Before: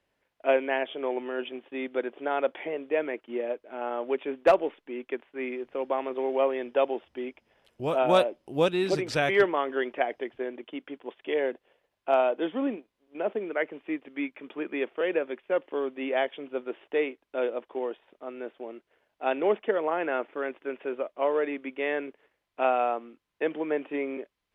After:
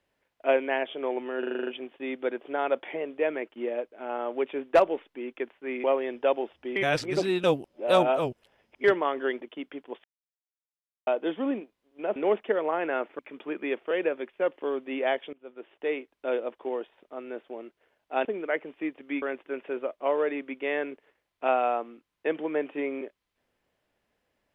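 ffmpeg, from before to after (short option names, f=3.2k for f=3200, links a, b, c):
-filter_complex "[0:a]asplit=19[a][b][c][d][e][f][g][h][i][j][k][l][m][n][o][p][q][r][s];[a]atrim=end=1.432[t];[b]atrim=start=1.388:end=1.432[u];[c]atrim=start=1.388:end=1.432[v];[d]atrim=start=1.388:end=1.432[w];[e]atrim=start=1.388:end=1.432[x];[f]atrim=start=1.388:end=1.432[y];[g]atrim=start=1.388:end=1.432[z];[h]atrim=start=1.388:end=5.562[aa];[i]atrim=start=6.358:end=7.282[ab];[j]atrim=start=7.278:end=9.362,asetpts=PTS-STARTPTS,areverse[ac];[k]atrim=start=9.358:end=9.932[ad];[l]atrim=start=10.568:end=11.2,asetpts=PTS-STARTPTS,afade=t=out:st=0.628:d=0.004:c=hsin[ae];[m]atrim=start=11.2:end=12.23,asetpts=PTS-STARTPTS,volume=0[af];[n]atrim=start=12.23:end=13.322,asetpts=PTS-STARTPTS,afade=t=in:d=0.004:c=hsin[ag];[o]atrim=start=19.348:end=20.382[ah];[p]atrim=start=14.288:end=16.43,asetpts=PTS-STARTPTS,afade=t=out:st=2.138:d=0.004:c=hsin:silence=0.0668344[ai];[q]atrim=start=16.43:end=19.352,asetpts=PTS-STARTPTS,afade=t=in:d=0.79:silence=0.0668344[aj];[r]atrim=start=13.318:end=14.292[ak];[s]atrim=start=20.378[al];[t][u]acrossfade=d=0.004:c1=hsin:c2=hsin[am];[am][v]acrossfade=d=0.004:c1=hsin:c2=hsin[an];[an][w]acrossfade=d=0.004:c1=hsin:c2=hsin[ao];[ao][x]acrossfade=d=0.004:c1=hsin:c2=hsin[ap];[ap][y]acrossfade=d=0.004:c1=hsin:c2=hsin[aq];[aq][z]acrossfade=d=0.004:c1=hsin:c2=hsin[ar];[ar][aa]acrossfade=d=0.004:c1=hsin:c2=hsin[as];[as][ab]acrossfade=d=0.004:c1=hsin:c2=hsin[at];[at][ac]acrossfade=d=0.004:c1=hsin:c2=hsin[au];[au][ad]acrossfade=d=0.004:c1=hsin:c2=hsin[av];[ae][af][ag]concat=n=3:v=0:a=1[aw];[av][aw]acrossfade=d=0.004:c1=hsin:c2=hsin[ax];[ax][ah]acrossfade=d=0.004:c1=hsin:c2=hsin[ay];[ai][aj]concat=n=2:v=0:a=1[az];[ay][az]acrossfade=d=0.004:c1=hsin:c2=hsin[ba];[ba][ak]acrossfade=d=0.004:c1=hsin:c2=hsin[bb];[bb][al]acrossfade=d=0.004:c1=hsin:c2=hsin"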